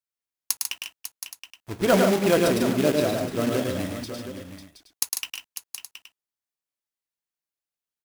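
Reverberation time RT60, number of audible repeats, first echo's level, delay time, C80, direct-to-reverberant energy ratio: no reverb, 6, -4.0 dB, 106 ms, no reverb, no reverb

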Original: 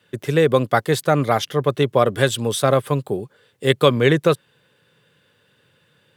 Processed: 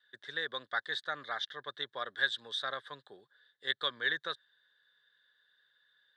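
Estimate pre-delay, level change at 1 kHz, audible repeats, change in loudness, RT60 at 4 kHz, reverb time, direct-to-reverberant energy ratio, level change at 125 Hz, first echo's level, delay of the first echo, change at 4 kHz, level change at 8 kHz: no reverb, -18.5 dB, no echo, -16.5 dB, no reverb, no reverb, no reverb, -39.5 dB, no echo, no echo, -8.0 dB, -27.5 dB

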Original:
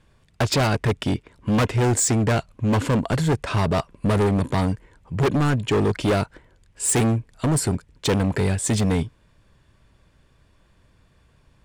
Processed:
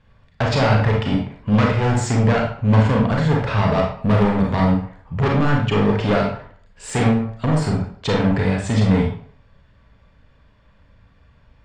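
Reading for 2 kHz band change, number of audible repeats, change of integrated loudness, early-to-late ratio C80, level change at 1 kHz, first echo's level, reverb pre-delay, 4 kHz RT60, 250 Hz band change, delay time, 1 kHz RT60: +4.0 dB, no echo, +3.5 dB, 8.0 dB, +4.5 dB, no echo, 32 ms, 0.40 s, +4.0 dB, no echo, 0.55 s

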